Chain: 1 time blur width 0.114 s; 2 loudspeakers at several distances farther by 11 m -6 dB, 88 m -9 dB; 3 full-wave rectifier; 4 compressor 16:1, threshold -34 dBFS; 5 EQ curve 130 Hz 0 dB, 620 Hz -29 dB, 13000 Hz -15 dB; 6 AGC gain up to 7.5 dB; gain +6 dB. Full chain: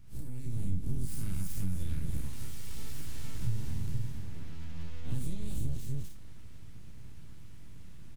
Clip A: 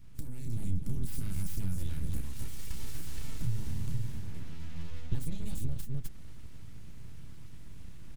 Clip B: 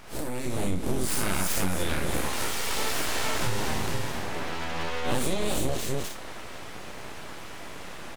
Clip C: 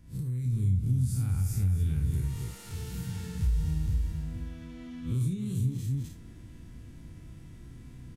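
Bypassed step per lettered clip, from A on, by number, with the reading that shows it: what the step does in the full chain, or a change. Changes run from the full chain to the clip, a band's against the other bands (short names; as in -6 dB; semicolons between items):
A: 1, crest factor change +2.0 dB; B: 5, 125 Hz band -21.0 dB; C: 3, crest factor change +2.5 dB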